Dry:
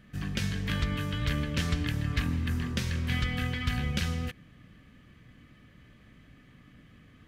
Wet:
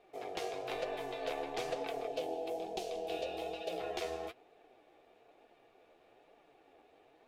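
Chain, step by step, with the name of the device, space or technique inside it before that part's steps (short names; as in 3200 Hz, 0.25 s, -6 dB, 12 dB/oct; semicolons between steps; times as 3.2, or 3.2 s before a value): alien voice (ring modulator 570 Hz; flange 1.1 Hz, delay 4.1 ms, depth 9.1 ms, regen +41%); 2.07–3.8 band shelf 1500 Hz -11.5 dB 1.3 oct; gain -2.5 dB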